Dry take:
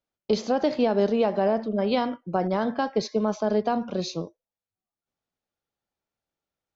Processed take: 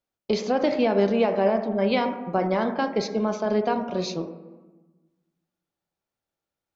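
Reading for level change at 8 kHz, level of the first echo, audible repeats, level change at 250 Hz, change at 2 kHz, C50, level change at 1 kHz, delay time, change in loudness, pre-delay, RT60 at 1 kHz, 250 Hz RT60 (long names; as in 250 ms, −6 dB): can't be measured, no echo audible, no echo audible, +1.0 dB, +4.0 dB, 10.0 dB, +1.0 dB, no echo audible, +1.0 dB, 3 ms, 1.2 s, 1.6 s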